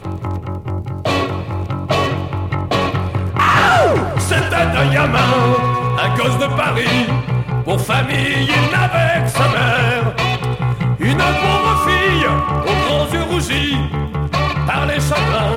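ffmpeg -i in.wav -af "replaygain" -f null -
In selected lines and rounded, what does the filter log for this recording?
track_gain = -2.8 dB
track_peak = 0.551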